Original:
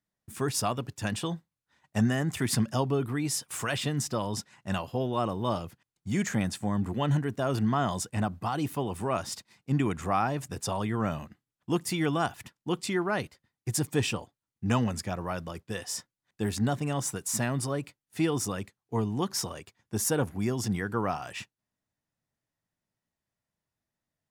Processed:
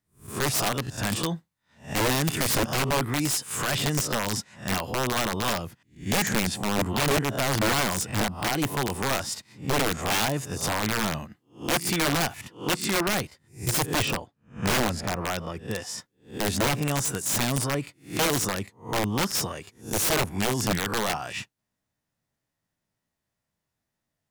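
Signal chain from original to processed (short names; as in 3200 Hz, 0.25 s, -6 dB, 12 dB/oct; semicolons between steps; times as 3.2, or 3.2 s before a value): spectral swells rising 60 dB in 0.33 s; 13.86–15.98 high shelf 6100 Hz -11 dB; wrapped overs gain 21.5 dB; gain +3.5 dB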